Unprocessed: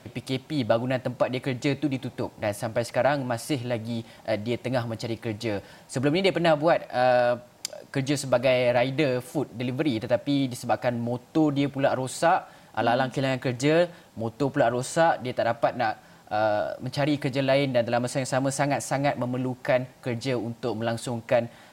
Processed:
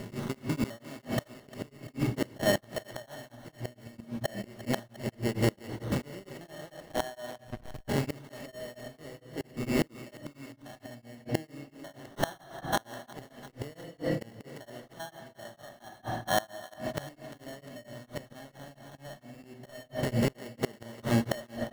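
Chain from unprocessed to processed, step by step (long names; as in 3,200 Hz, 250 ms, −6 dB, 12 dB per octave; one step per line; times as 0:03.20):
spectrum averaged block by block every 100 ms
decimation without filtering 18×
rectangular room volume 1,500 cubic metres, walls mixed, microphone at 1.3 metres
0:06.76–0:07.88: slack as between gear wheels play −22 dBFS
gate with flip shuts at −19 dBFS, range −25 dB
on a send: feedback echo with a high-pass in the loop 351 ms, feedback 59%, high-pass 390 Hz, level −15 dB
on the sum: tremolo along a rectified sine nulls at 4.4 Hz
level +5 dB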